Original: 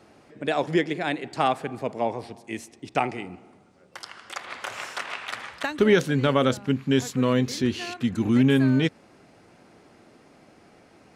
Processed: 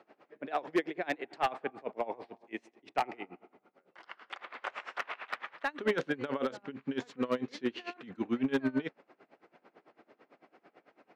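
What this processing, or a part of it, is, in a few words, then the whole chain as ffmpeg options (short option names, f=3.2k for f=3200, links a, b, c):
helicopter radio: -af "highpass=340,lowpass=2.5k,aeval=exprs='val(0)*pow(10,-23*(0.5-0.5*cos(2*PI*9*n/s))/20)':c=same,asoftclip=type=hard:threshold=-22dB"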